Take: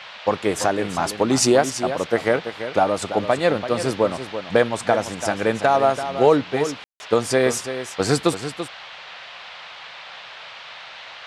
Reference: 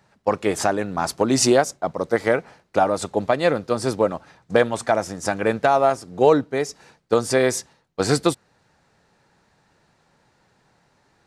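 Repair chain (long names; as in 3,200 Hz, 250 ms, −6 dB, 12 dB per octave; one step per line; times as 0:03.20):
ambience match 0:06.84–0:07.00
noise reduction from a noise print 23 dB
echo removal 336 ms −10.5 dB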